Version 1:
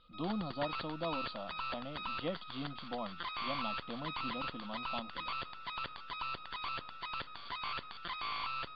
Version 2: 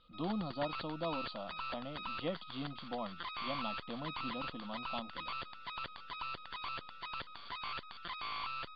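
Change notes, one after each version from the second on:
reverb: off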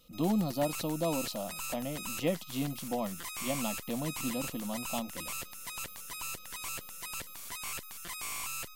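background −5.5 dB
master: remove Chebyshev low-pass with heavy ripple 4,700 Hz, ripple 9 dB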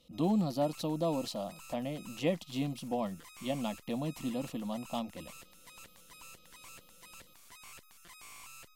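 background −11.5 dB
master: add high-shelf EQ 11,000 Hz −7.5 dB

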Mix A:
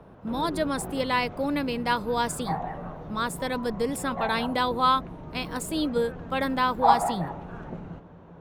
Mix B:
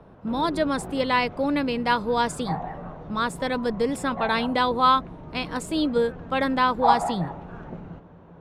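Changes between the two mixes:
speech +3.5 dB
master: add high-frequency loss of the air 53 metres

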